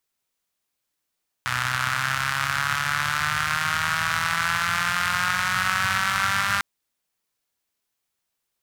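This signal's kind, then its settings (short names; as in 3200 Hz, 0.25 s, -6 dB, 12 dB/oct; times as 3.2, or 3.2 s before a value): four-cylinder engine model, changing speed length 5.15 s, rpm 3700, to 6000, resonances 110/1400 Hz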